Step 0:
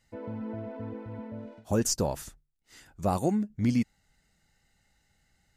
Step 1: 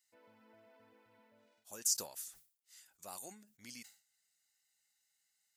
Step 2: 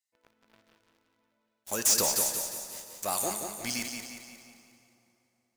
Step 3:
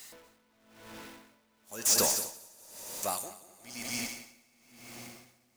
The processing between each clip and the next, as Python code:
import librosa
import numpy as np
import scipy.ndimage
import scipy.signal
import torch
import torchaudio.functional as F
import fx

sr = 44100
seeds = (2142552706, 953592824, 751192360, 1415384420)

y1 = np.diff(x, prepend=0.0)
y1 = fx.sustainer(y1, sr, db_per_s=130.0)
y1 = y1 * librosa.db_to_amplitude(-2.5)
y2 = fx.leveller(y1, sr, passes=5)
y2 = fx.echo_feedback(y2, sr, ms=178, feedback_pct=48, wet_db=-6.0)
y2 = fx.rev_plate(y2, sr, seeds[0], rt60_s=3.1, hf_ratio=0.75, predelay_ms=0, drr_db=10.0)
y3 = y2 + 0.5 * 10.0 ** (-41.5 / 20.0) * np.sign(y2)
y3 = y3 + 10.0 ** (-6.0 / 20.0) * np.pad(y3, (int(242 * sr / 1000.0), 0))[:len(y3)]
y3 = y3 * 10.0 ** (-24 * (0.5 - 0.5 * np.cos(2.0 * np.pi * 1.0 * np.arange(len(y3)) / sr)) / 20.0)